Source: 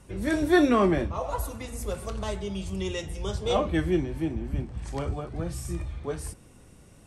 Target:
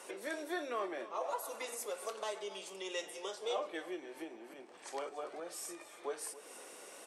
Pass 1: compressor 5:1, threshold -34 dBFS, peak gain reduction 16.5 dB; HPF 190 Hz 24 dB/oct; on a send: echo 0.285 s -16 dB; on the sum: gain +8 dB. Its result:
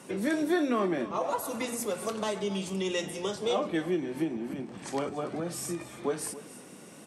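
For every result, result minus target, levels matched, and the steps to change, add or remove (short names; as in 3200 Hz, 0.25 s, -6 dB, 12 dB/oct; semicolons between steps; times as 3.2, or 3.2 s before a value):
250 Hz band +7.5 dB; compressor: peak gain reduction -7 dB
change: HPF 420 Hz 24 dB/oct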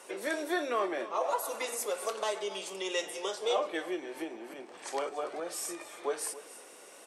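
compressor: peak gain reduction -7 dB
change: compressor 5:1, threshold -43 dBFS, peak gain reduction 24 dB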